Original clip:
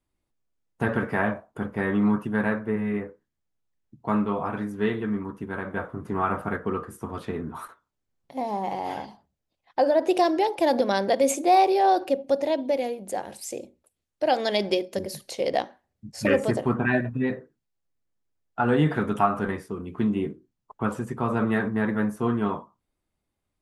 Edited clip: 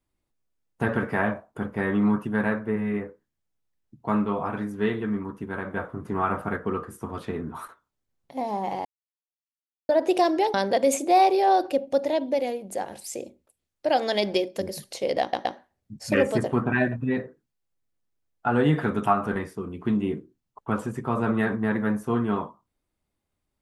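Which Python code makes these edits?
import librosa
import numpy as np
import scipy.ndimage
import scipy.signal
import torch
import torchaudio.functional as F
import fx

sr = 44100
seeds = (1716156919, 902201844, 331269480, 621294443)

y = fx.edit(x, sr, fx.silence(start_s=8.85, length_s=1.04),
    fx.cut(start_s=10.54, length_s=0.37),
    fx.stutter(start_s=15.58, slice_s=0.12, count=3), tone=tone)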